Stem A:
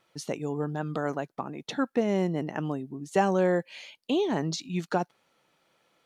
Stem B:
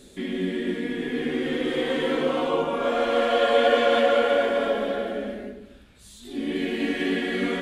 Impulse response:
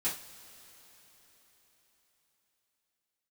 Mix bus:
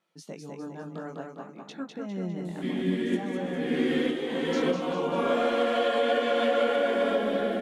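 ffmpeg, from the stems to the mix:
-filter_complex "[0:a]alimiter=limit=-19.5dB:level=0:latency=1:release=253,flanger=delay=18:depth=6.3:speed=0.58,volume=-6.5dB,asplit=3[link_01][link_02][link_03];[link_02]volume=-3.5dB[link_04];[1:a]adelay=2450,volume=0dB[link_05];[link_03]apad=whole_len=444003[link_06];[link_05][link_06]sidechaincompress=threshold=-42dB:ratio=4:attack=16:release=411[link_07];[link_04]aecho=0:1:202|404|606|808|1010|1212:1|0.46|0.212|0.0973|0.0448|0.0206[link_08];[link_01][link_07][link_08]amix=inputs=3:normalize=0,lowshelf=frequency=140:width_type=q:width=3:gain=-7,alimiter=limit=-15.5dB:level=0:latency=1:release=382"

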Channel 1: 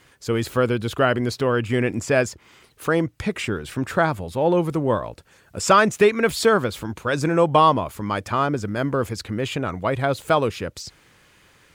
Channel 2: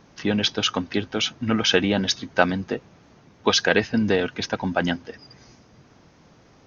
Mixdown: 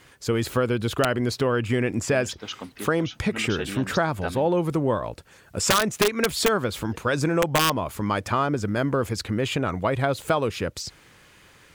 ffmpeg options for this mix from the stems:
ffmpeg -i stem1.wav -i stem2.wav -filter_complex "[0:a]aeval=exprs='(mod(2.11*val(0)+1,2)-1)/2.11':channel_layout=same,volume=2dB[link_01];[1:a]adelay=1850,volume=-12.5dB,asplit=3[link_02][link_03][link_04];[link_02]atrim=end=4.48,asetpts=PTS-STARTPTS,afade=type=out:start_time=4.476:duration=0.004:curve=hsin[link_05];[link_03]atrim=start=4.48:end=6.86,asetpts=PTS-STARTPTS,volume=0[link_06];[link_04]atrim=start=6.86,asetpts=PTS-STARTPTS,afade=type=in:duration=0.004:curve=hsin[link_07];[link_05][link_06][link_07]concat=n=3:v=0:a=1[link_08];[link_01][link_08]amix=inputs=2:normalize=0,acompressor=threshold=-20dB:ratio=3" out.wav

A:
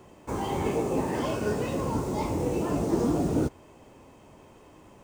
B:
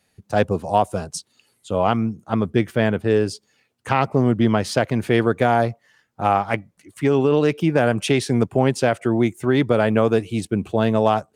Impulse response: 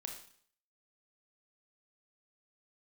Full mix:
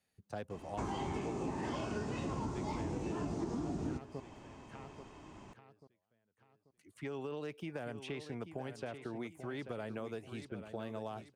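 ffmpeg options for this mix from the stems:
-filter_complex "[0:a]lowpass=frequency=7400:width=0.5412,lowpass=frequency=7400:width=1.3066,equalizer=frequency=510:width_type=o:width=0.45:gain=-9.5,adelay=500,volume=-1.5dB,asplit=2[link_01][link_02];[link_02]volume=-9dB[link_03];[1:a]acrossover=split=520|3500|7100[link_04][link_05][link_06][link_07];[link_04]acompressor=threshold=-27dB:ratio=4[link_08];[link_05]acompressor=threshold=-28dB:ratio=4[link_09];[link_06]acompressor=threshold=-48dB:ratio=4[link_10];[link_07]acompressor=threshold=-56dB:ratio=4[link_11];[link_08][link_09][link_10][link_11]amix=inputs=4:normalize=0,volume=-16dB,asplit=3[link_12][link_13][link_14];[link_12]atrim=end=4.2,asetpts=PTS-STARTPTS,afade=type=out:start_time=4.196:duration=0.004:curve=hsin[link_15];[link_13]atrim=start=4.2:end=6.71,asetpts=PTS-STARTPTS,volume=0[link_16];[link_14]atrim=start=6.71,asetpts=PTS-STARTPTS,afade=type=in:duration=0.004:curve=hsin[link_17];[link_15][link_16][link_17]concat=n=3:v=0:a=1,asplit=2[link_18][link_19];[link_19]volume=-10.5dB[link_20];[2:a]atrim=start_sample=2205[link_21];[link_03][link_21]afir=irnorm=-1:irlink=0[link_22];[link_20]aecho=0:1:837|1674|2511|3348|4185:1|0.36|0.13|0.0467|0.0168[link_23];[link_01][link_18][link_22][link_23]amix=inputs=4:normalize=0,acompressor=threshold=-35dB:ratio=8"

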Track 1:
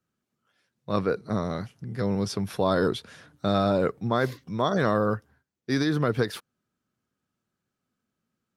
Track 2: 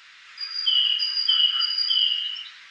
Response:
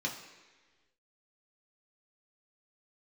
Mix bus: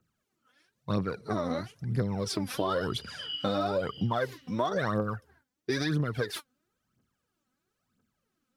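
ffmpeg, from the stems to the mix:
-filter_complex "[0:a]aphaser=in_gain=1:out_gain=1:delay=4.1:decay=0.7:speed=1:type=triangular,volume=0.5dB,asplit=2[link_01][link_02];[1:a]adelay=1900,volume=-16dB,asplit=2[link_03][link_04];[link_04]volume=-10.5dB[link_05];[link_02]apad=whole_len=203208[link_06];[link_03][link_06]sidechaincompress=threshold=-43dB:ratio=8:attack=16:release=151[link_07];[2:a]atrim=start_sample=2205[link_08];[link_05][link_08]afir=irnorm=-1:irlink=0[link_09];[link_01][link_07][link_09]amix=inputs=3:normalize=0,acompressor=threshold=-26dB:ratio=6"

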